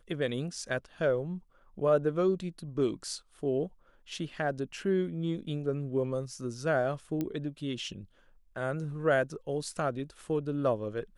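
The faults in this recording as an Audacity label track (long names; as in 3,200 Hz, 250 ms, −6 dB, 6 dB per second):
7.210000	7.210000	click −20 dBFS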